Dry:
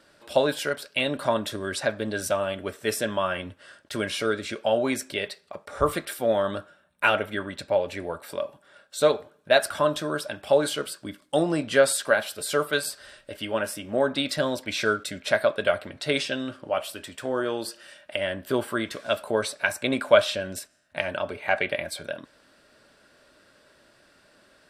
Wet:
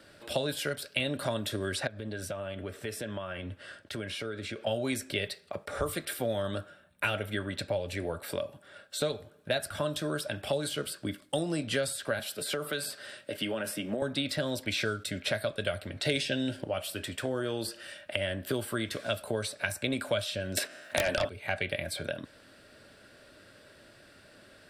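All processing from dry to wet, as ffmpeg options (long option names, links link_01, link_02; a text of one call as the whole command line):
ffmpeg -i in.wav -filter_complex "[0:a]asettb=1/sr,asplit=3[link_01][link_02][link_03];[link_01]atrim=end=1.874[link_04];[link_02]atrim=start=1.87:end=4.67,asetpts=PTS-STARTPTS,afade=type=in:duration=0.004:curve=qsin,afade=type=out:start_time=2.796:duration=0.004:curve=qsin,highshelf=frequency=8000:gain=-6,acompressor=threshold=-40dB:ratio=3:attack=3.2:release=140:knee=1:detection=peak[link_05];[link_03]atrim=start=4.666[link_06];[link_04][link_05]acrossfade=duration=0.004:curve1=hsin:curve2=qsin[link_07];[link_07][link_06]acrossfade=duration=0.004:curve1=qsin:curve2=hsin,asettb=1/sr,asplit=3[link_08][link_09][link_10];[link_08]atrim=end=12.194[link_11];[link_09]atrim=start=12.19:end=14.02,asetpts=PTS-STARTPTS,afade=type=in:duration=0.004:curve=qsin,afade=type=out:start_time=1.826:duration=0.004:curve=qsin,highpass=frequency=140:width=0.5412,highpass=frequency=140:width=1.3066,acompressor=threshold=-27dB:ratio=3:attack=3.2:release=140:knee=1:detection=peak[link_12];[link_10]atrim=start=14.016[link_13];[link_11][link_12]acrossfade=duration=0.004:curve1=hsin:curve2=qsin[link_14];[link_14][link_13]acrossfade=duration=0.004:curve1=qsin:curve2=hsin,asettb=1/sr,asplit=3[link_15][link_16][link_17];[link_15]atrim=end=16.054[link_18];[link_16]atrim=start=16.05:end=16.64,asetpts=PTS-STARTPTS,afade=type=in:duration=0.004:curve=qsin,afade=type=out:start_time=0.586:duration=0.004:curve=qsin,asuperstop=centerf=1200:order=4:qfactor=2.8,acontrast=72[link_19];[link_17]atrim=start=16.636[link_20];[link_18][link_19]acrossfade=duration=0.004:curve1=hsin:curve2=qsin[link_21];[link_21][link_20]acrossfade=duration=0.004:curve1=qsin:curve2=hsin,asettb=1/sr,asplit=3[link_22][link_23][link_24];[link_22]atrim=end=20.574[link_25];[link_23]atrim=start=20.57:end=21.29,asetpts=PTS-STARTPTS,afade=type=in:duration=0.004:curve=qsin,afade=type=out:start_time=0.716:duration=0.004:curve=qsin,highpass=360,aeval=exprs='0.422*sin(PI/2*5.62*val(0)/0.422)':channel_layout=same[link_26];[link_24]atrim=start=21.286[link_27];[link_25][link_26]acrossfade=duration=0.004:curve1=hsin:curve2=qsin[link_28];[link_28][link_27]acrossfade=duration=0.004:curve1=qsin:curve2=hsin,equalizer=frequency=100:width_type=o:width=0.67:gain=7,equalizer=frequency=1000:width_type=o:width=0.67:gain=-6,equalizer=frequency=6300:width_type=o:width=0.67:gain=-4,acrossover=split=180|3800[link_29][link_30][link_31];[link_29]acompressor=threshold=-43dB:ratio=4[link_32];[link_30]acompressor=threshold=-35dB:ratio=4[link_33];[link_31]acompressor=threshold=-41dB:ratio=4[link_34];[link_32][link_33][link_34]amix=inputs=3:normalize=0,volume=3.5dB" out.wav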